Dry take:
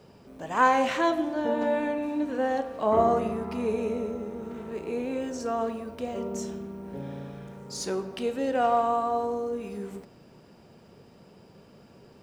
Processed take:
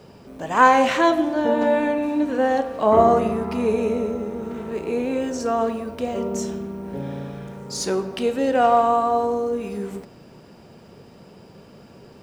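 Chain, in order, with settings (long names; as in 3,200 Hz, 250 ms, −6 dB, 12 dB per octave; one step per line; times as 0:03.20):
level +7 dB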